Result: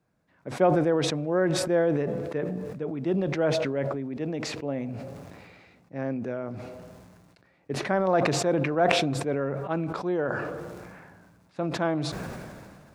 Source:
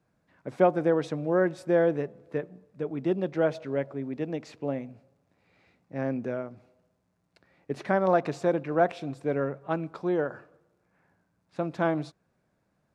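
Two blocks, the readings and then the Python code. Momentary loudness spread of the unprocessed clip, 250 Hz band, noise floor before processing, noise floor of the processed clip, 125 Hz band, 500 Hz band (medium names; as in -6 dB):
13 LU, +2.0 dB, -74 dBFS, -63 dBFS, +4.5 dB, +1.0 dB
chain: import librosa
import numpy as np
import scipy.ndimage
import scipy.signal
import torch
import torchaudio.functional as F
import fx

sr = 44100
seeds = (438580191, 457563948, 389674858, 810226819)

y = fx.sustainer(x, sr, db_per_s=28.0)
y = F.gain(torch.from_numpy(y), -1.0).numpy()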